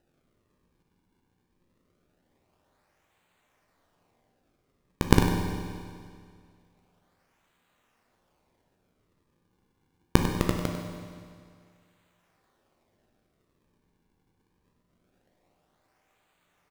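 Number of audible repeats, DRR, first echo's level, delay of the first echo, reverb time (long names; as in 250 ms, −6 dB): 1, 1.5 dB, −10.0 dB, 98 ms, 2.1 s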